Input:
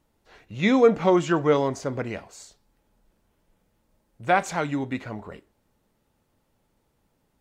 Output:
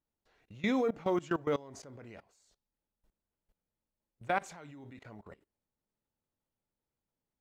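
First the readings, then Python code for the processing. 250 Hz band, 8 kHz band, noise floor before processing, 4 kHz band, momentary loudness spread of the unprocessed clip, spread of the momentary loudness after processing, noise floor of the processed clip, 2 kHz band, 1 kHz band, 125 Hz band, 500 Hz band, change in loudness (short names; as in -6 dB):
-11.5 dB, -13.5 dB, -71 dBFS, -12.0 dB, 19 LU, 20 LU, under -85 dBFS, -11.0 dB, -12.0 dB, -14.5 dB, -13.0 dB, -10.0 dB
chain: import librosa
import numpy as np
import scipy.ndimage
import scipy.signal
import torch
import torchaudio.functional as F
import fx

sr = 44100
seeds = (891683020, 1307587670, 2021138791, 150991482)

y = fx.quant_float(x, sr, bits=6)
y = fx.level_steps(y, sr, step_db=21)
y = F.gain(torch.from_numpy(y), -7.5).numpy()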